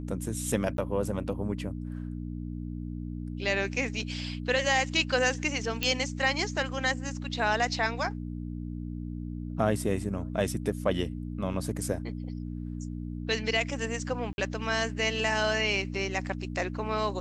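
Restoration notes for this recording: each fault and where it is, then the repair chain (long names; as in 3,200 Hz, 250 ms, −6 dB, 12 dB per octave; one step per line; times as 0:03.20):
mains hum 60 Hz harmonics 5 −36 dBFS
0:00.77–0:00.78: drop-out 12 ms
0:05.83: click −13 dBFS
0:14.33–0:14.38: drop-out 51 ms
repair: click removal
hum removal 60 Hz, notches 5
repair the gap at 0:00.77, 12 ms
repair the gap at 0:14.33, 51 ms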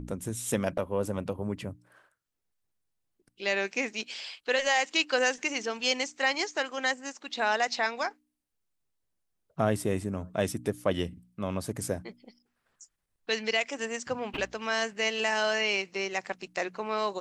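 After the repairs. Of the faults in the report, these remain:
none of them is left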